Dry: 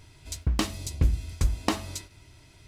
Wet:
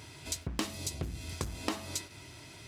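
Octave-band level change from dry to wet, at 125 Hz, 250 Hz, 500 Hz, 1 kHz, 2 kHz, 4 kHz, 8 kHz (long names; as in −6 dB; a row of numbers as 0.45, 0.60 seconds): −11.5, −6.5, −4.5, −7.0, −4.0, −3.0, −1.0 decibels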